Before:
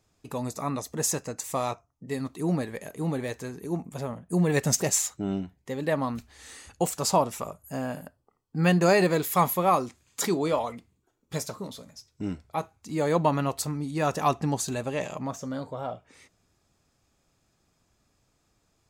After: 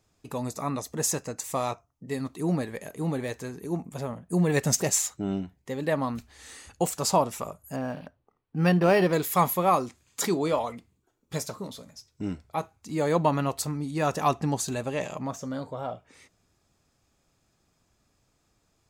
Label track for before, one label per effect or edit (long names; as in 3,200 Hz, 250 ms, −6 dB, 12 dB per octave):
7.760000	9.130000	linearly interpolated sample-rate reduction rate divided by 6×